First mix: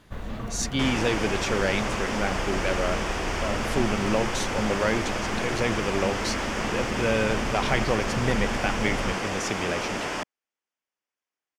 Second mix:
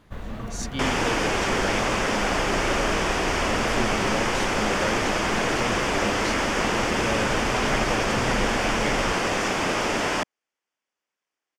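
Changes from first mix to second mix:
speech -5.5 dB; second sound +5.5 dB

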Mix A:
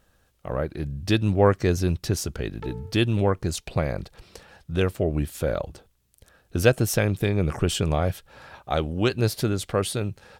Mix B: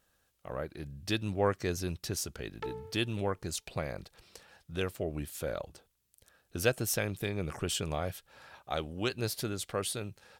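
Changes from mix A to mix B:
speech -8.5 dB; master: add tilt EQ +1.5 dB/octave

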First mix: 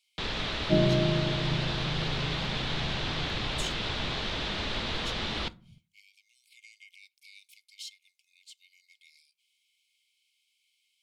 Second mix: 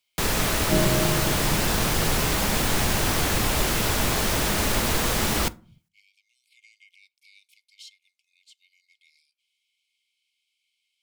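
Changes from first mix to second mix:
speech: add tilt EQ -1.5 dB/octave; first sound: remove four-pole ladder low-pass 4.2 kHz, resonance 55%

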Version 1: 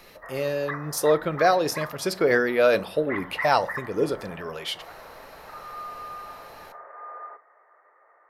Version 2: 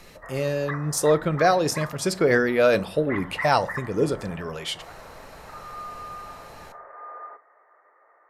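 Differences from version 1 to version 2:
speech: add peaking EQ 7.7 kHz +14 dB 1 oct; master: add tone controls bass +8 dB, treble -7 dB

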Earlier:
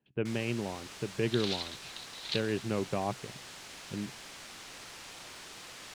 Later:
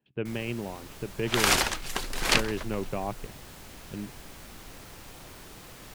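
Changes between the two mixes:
first sound: add tilt EQ -3.5 dB/octave; second sound: remove band-pass filter 3.9 kHz, Q 6.4; master: remove distance through air 85 m

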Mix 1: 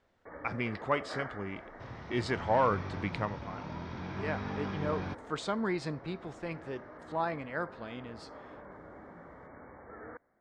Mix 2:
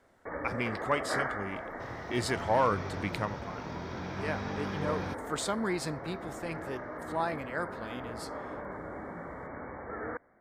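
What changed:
first sound +8.5 dB; master: remove distance through air 130 m

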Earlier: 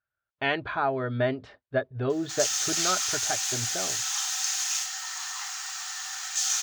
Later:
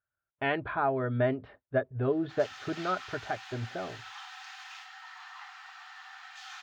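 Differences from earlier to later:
background -3.5 dB; master: add distance through air 430 m

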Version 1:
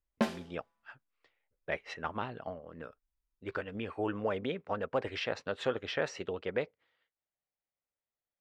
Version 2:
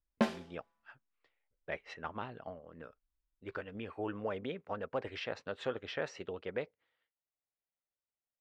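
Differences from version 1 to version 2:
speech -4.5 dB; master: add treble shelf 8.7 kHz -7.5 dB

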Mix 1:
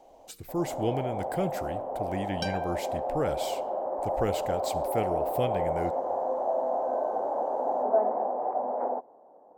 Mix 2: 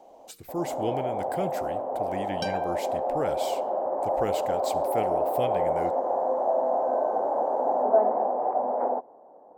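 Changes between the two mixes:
speech: add bass shelf 98 Hz -11.5 dB; first sound +3.5 dB

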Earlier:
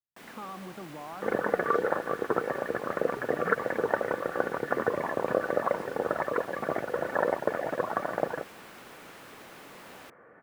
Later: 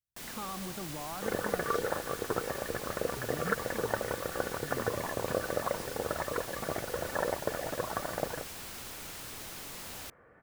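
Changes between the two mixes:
second sound -5.5 dB; master: remove three-band isolator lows -18 dB, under 150 Hz, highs -13 dB, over 2.8 kHz

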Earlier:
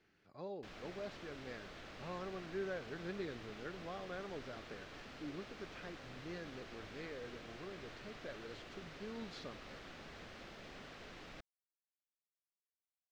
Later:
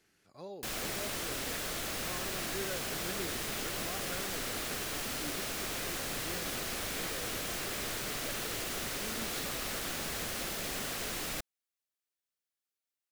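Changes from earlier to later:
background +12.0 dB; master: remove distance through air 200 m

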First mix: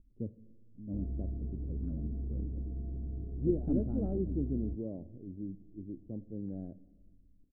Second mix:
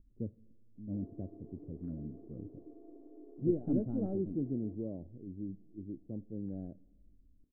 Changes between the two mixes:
speech: send -6.5 dB; first sound: add brick-wall FIR high-pass 270 Hz

